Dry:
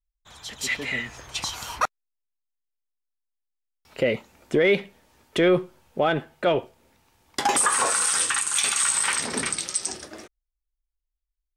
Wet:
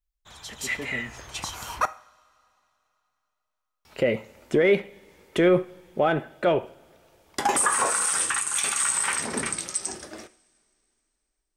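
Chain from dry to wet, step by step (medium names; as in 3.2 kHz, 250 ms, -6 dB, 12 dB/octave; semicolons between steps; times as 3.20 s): two-slope reverb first 0.49 s, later 3.1 s, from -22 dB, DRR 13.5 dB; dynamic bell 4.1 kHz, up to -7 dB, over -41 dBFS, Q 0.97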